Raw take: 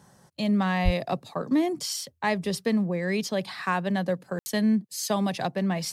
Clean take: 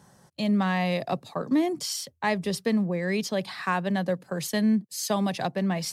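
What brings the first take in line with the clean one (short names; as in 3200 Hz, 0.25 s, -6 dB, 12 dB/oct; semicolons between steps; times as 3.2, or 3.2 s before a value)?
0.84–0.96 HPF 140 Hz 24 dB/oct; room tone fill 4.39–4.46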